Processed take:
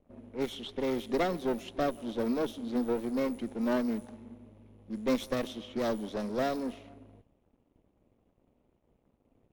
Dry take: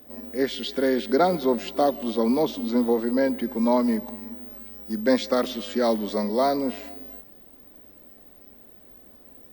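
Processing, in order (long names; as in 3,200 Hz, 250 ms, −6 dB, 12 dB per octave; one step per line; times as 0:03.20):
lower of the sound and its delayed copy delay 0.31 ms
dead-zone distortion −53.5 dBFS
low-pass that shuts in the quiet parts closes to 1,600 Hz, open at −20 dBFS
level −8 dB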